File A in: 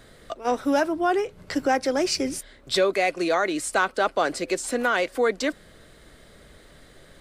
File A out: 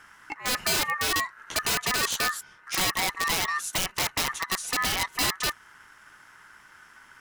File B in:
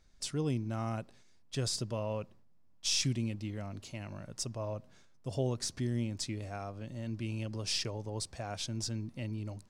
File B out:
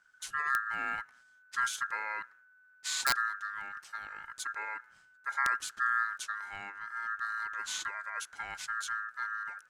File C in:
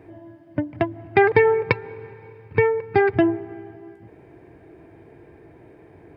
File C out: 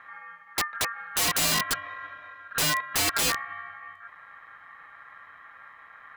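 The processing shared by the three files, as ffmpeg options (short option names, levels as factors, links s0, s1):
-af "equalizer=f=125:t=o:w=0.33:g=8,equalizer=f=250:t=o:w=0.33:g=6,equalizer=f=2000:t=o:w=0.33:g=-11,equalizer=f=3150:t=o:w=0.33:g=-5,aeval=exprs='val(0)*sin(2*PI*1500*n/s)':c=same,aeval=exprs='(mod(8.41*val(0)+1,2)-1)/8.41':c=same"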